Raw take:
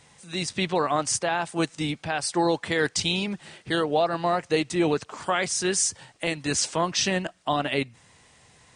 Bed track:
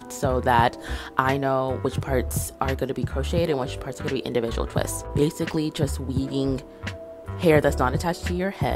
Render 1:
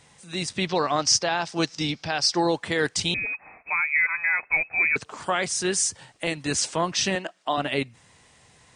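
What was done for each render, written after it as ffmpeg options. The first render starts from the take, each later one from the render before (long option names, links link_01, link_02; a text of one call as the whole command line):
ffmpeg -i in.wav -filter_complex "[0:a]asettb=1/sr,asplit=3[link_01][link_02][link_03];[link_01]atrim=end=0.674[link_04];[link_02]atrim=start=0.67:end=2.4,asetpts=PTS-STARTPTS,afade=type=in:duration=0.004:curve=qsin,afade=type=out:start_time=1.726:duration=0.004:curve=qsin,lowpass=frequency=5300:width_type=q:width=4.4[link_05];[link_03]atrim=start=2.396[link_06];[link_04][link_05]acrossfade=duration=0.004:curve1=hsin:curve2=qsin[link_07];[link_07][link_06]acrossfade=duration=0.004:curve1=qsin:curve2=hsin,asettb=1/sr,asplit=3[link_08][link_09][link_10];[link_08]atrim=end=3.144[link_11];[link_09]atrim=start=3.14:end=4.96,asetpts=PTS-STARTPTS,afade=type=in:duration=0.004:curve=qsin,afade=type=out:start_time=1.816:duration=0.004:curve=qsin,lowpass=frequency=2300:width_type=q:width=0.5098,lowpass=frequency=2300:width_type=q:width=0.6013,lowpass=frequency=2300:width_type=q:width=0.9,lowpass=frequency=2300:width_type=q:width=2.563,afreqshift=-2700[link_12];[link_10]atrim=start=4.956[link_13];[link_11][link_12]acrossfade=duration=0.004:curve1=hsin:curve2=qsin[link_14];[link_14][link_13]acrossfade=duration=0.004:curve1=qsin:curve2=hsin,asettb=1/sr,asplit=3[link_15][link_16][link_17];[link_15]atrim=end=7.154[link_18];[link_16]atrim=start=7.15:end=7.58,asetpts=PTS-STARTPTS,afade=type=in:duration=0.004:curve=qsin,afade=type=out:start_time=0.426:duration=0.004:curve=qsin,highpass=310,lowpass=7800[link_19];[link_17]atrim=start=7.576[link_20];[link_18][link_19]acrossfade=duration=0.004:curve1=hsin:curve2=qsin[link_21];[link_21][link_20]acrossfade=duration=0.004:curve1=qsin:curve2=hsin" out.wav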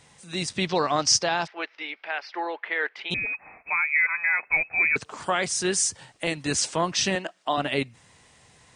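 ffmpeg -i in.wav -filter_complex "[0:a]asplit=3[link_01][link_02][link_03];[link_01]afade=type=out:start_time=1.46:duration=0.02[link_04];[link_02]highpass=frequency=480:width=0.5412,highpass=frequency=480:width=1.3066,equalizer=frequency=520:width_type=q:width=4:gain=-7,equalizer=frequency=750:width_type=q:width=4:gain=-5,equalizer=frequency=1100:width_type=q:width=4:gain=-4,equalizer=frequency=2100:width_type=q:width=4:gain=4,lowpass=frequency=2600:width=0.5412,lowpass=frequency=2600:width=1.3066,afade=type=in:start_time=1.46:duration=0.02,afade=type=out:start_time=3.1:duration=0.02[link_05];[link_03]afade=type=in:start_time=3.1:duration=0.02[link_06];[link_04][link_05][link_06]amix=inputs=3:normalize=0,asettb=1/sr,asplit=3[link_07][link_08][link_09];[link_07]atrim=end=3.754[link_10];[link_08]atrim=start=3.75:end=4.47,asetpts=PTS-STARTPTS,afade=type=in:duration=0.004:curve=qsin,afade=type=out:start_time=0.716:duration=0.004:curve=qsin,highpass=200[link_11];[link_09]atrim=start=4.466[link_12];[link_10][link_11]acrossfade=duration=0.004:curve1=hsin:curve2=qsin[link_13];[link_13][link_12]acrossfade=duration=0.004:curve1=qsin:curve2=hsin" out.wav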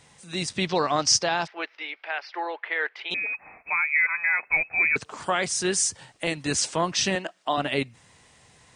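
ffmpeg -i in.wav -filter_complex "[0:a]asettb=1/sr,asplit=3[link_01][link_02][link_03];[link_01]atrim=end=1.774[link_04];[link_02]atrim=start=1.77:end=3.35,asetpts=PTS-STARTPTS,afade=type=in:duration=0.004:curve=qsin,afade=type=out:start_time=1.576:duration=0.004:curve=qsin,highpass=350,lowpass=6600[link_05];[link_03]atrim=start=3.346[link_06];[link_04][link_05]acrossfade=duration=0.004:curve1=hsin:curve2=qsin[link_07];[link_07][link_06]acrossfade=duration=0.004:curve1=qsin:curve2=hsin" out.wav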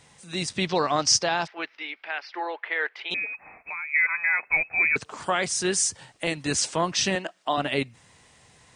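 ffmpeg -i in.wav -filter_complex "[0:a]asplit=3[link_01][link_02][link_03];[link_01]afade=type=out:start_time=1.57:duration=0.02[link_04];[link_02]asubboost=boost=8.5:cutoff=210,afade=type=in:start_time=1.57:duration=0.02,afade=type=out:start_time=2.39:duration=0.02[link_05];[link_03]afade=type=in:start_time=2.39:duration=0.02[link_06];[link_04][link_05][link_06]amix=inputs=3:normalize=0,asplit=3[link_07][link_08][link_09];[link_07]afade=type=out:start_time=3.24:duration=0.02[link_10];[link_08]acompressor=threshold=-33dB:ratio=3:attack=3.2:release=140:knee=1:detection=peak,afade=type=in:start_time=3.24:duration=0.02,afade=type=out:start_time=3.93:duration=0.02[link_11];[link_09]afade=type=in:start_time=3.93:duration=0.02[link_12];[link_10][link_11][link_12]amix=inputs=3:normalize=0" out.wav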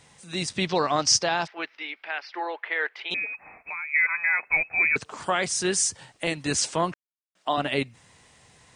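ffmpeg -i in.wav -filter_complex "[0:a]asplit=3[link_01][link_02][link_03];[link_01]atrim=end=6.94,asetpts=PTS-STARTPTS,afade=type=out:start_time=6.936:duration=0.004:curve=hsin[link_04];[link_02]atrim=start=6.94:end=7.35,asetpts=PTS-STARTPTS,volume=0[link_05];[link_03]atrim=start=7.35,asetpts=PTS-STARTPTS,afade=type=in:duration=0.004:curve=hsin[link_06];[link_04][link_05][link_06]concat=n=3:v=0:a=1" out.wav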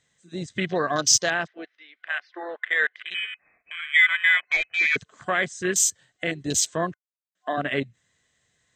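ffmpeg -i in.wav -af "afwtdn=0.0316,superequalizer=9b=0.398:11b=2:13b=1.78:15b=2:16b=0.316" out.wav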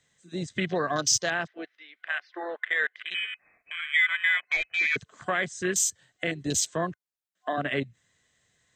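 ffmpeg -i in.wav -filter_complex "[0:a]acrossover=split=150[link_01][link_02];[link_02]acompressor=threshold=-29dB:ratio=1.5[link_03];[link_01][link_03]amix=inputs=2:normalize=0" out.wav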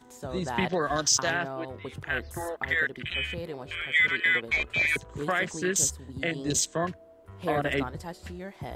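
ffmpeg -i in.wav -i bed.wav -filter_complex "[1:a]volume=-14dB[link_01];[0:a][link_01]amix=inputs=2:normalize=0" out.wav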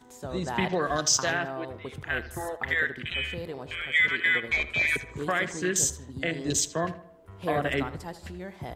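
ffmpeg -i in.wav -filter_complex "[0:a]asplit=2[link_01][link_02];[link_02]adelay=78,lowpass=frequency=3500:poles=1,volume=-14dB,asplit=2[link_03][link_04];[link_04]adelay=78,lowpass=frequency=3500:poles=1,volume=0.44,asplit=2[link_05][link_06];[link_06]adelay=78,lowpass=frequency=3500:poles=1,volume=0.44,asplit=2[link_07][link_08];[link_08]adelay=78,lowpass=frequency=3500:poles=1,volume=0.44[link_09];[link_01][link_03][link_05][link_07][link_09]amix=inputs=5:normalize=0" out.wav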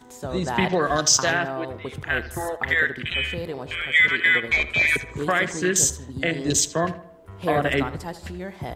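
ffmpeg -i in.wav -af "volume=5.5dB" out.wav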